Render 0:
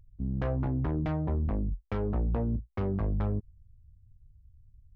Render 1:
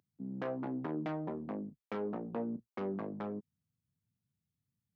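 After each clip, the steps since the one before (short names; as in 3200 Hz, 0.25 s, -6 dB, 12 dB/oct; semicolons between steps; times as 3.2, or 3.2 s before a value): HPF 200 Hz 24 dB/oct; gain -3 dB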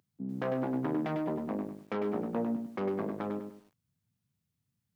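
lo-fi delay 0.1 s, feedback 35%, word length 11-bit, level -6 dB; gain +4.5 dB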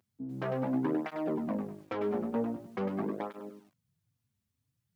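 tape flanging out of phase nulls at 0.45 Hz, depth 6.7 ms; gain +3 dB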